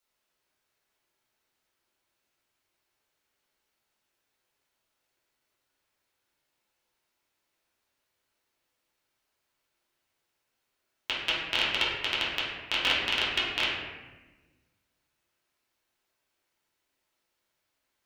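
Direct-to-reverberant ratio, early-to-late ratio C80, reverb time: −8.5 dB, 3.0 dB, 1.2 s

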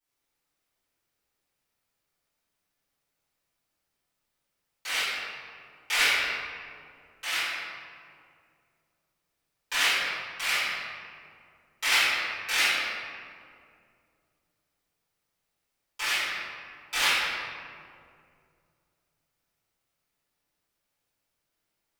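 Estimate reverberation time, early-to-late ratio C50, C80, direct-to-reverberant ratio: 2.3 s, −3.5 dB, −1.0 dB, −17.0 dB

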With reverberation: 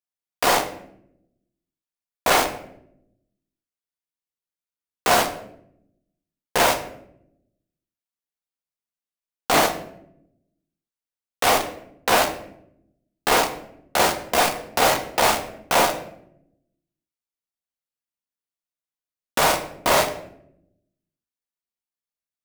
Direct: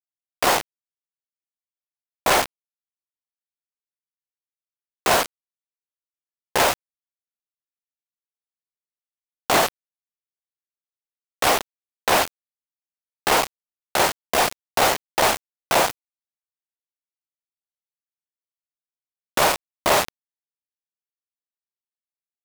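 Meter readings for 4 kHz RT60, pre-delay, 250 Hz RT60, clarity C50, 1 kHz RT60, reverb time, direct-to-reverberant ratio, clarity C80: 0.45 s, 4 ms, 1.2 s, 10.5 dB, 0.60 s, 0.75 s, 4.0 dB, 13.5 dB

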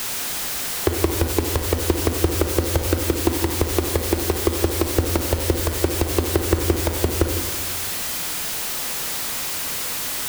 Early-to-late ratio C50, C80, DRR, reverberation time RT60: 6.0 dB, 8.0 dB, 5.5 dB, 1.3 s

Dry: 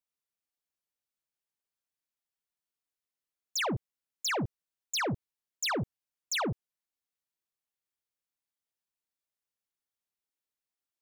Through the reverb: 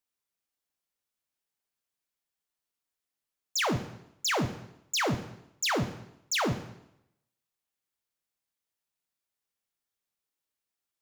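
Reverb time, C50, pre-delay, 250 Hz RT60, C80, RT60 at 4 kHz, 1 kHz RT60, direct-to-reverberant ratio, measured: 0.80 s, 11.0 dB, 5 ms, 0.80 s, 13.5 dB, 0.75 s, 0.80 s, 8.0 dB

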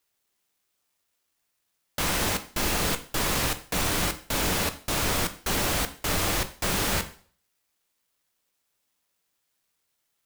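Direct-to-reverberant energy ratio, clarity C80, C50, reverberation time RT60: 8.5 dB, 18.5 dB, 14.5 dB, 0.50 s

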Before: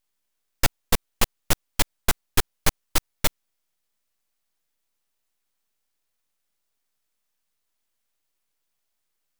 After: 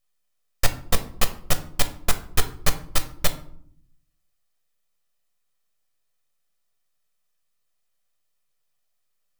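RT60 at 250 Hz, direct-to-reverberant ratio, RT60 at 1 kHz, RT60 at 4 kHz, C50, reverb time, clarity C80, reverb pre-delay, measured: 1.1 s, 7.5 dB, 0.60 s, 0.35 s, 13.5 dB, 0.65 s, 17.5 dB, 6 ms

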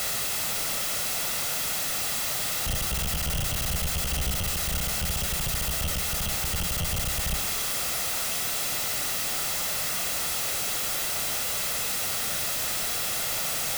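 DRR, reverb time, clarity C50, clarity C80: 7.5 dB, 0.70 s, 11.0 dB, 14.5 dB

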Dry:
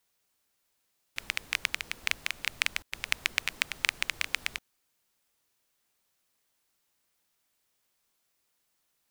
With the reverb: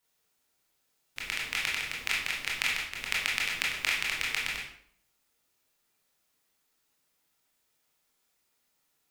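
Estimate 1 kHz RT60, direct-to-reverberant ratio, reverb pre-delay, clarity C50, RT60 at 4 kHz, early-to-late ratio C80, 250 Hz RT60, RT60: 0.60 s, −4.5 dB, 19 ms, 3.0 dB, 0.45 s, 7.5 dB, 0.70 s, 0.60 s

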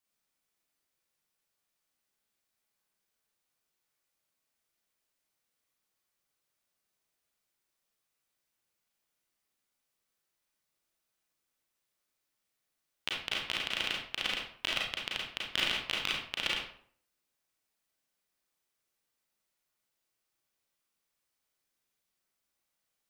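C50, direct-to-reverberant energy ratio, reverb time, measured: 2.5 dB, −3.5 dB, 0.55 s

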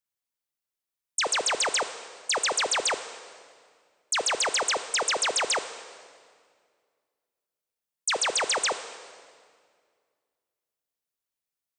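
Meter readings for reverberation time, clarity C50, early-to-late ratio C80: 2.0 s, 11.5 dB, 12.5 dB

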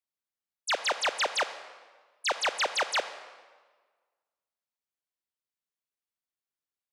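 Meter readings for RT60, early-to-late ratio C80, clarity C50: 1.5 s, 13.0 dB, 12.0 dB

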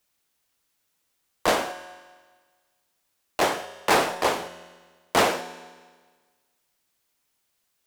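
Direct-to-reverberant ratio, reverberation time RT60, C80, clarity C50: 11.0 dB, 1.5 s, 14.5 dB, 13.0 dB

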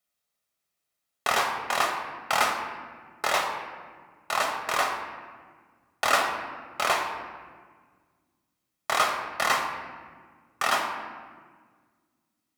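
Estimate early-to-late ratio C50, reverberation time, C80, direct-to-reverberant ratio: 5.5 dB, 1.6 s, 7.0 dB, 3.0 dB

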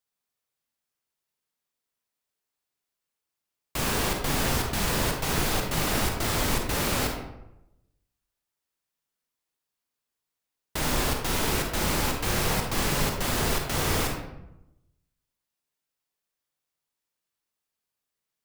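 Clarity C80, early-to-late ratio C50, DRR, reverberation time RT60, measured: 6.0 dB, 3.5 dB, 1.0 dB, 0.85 s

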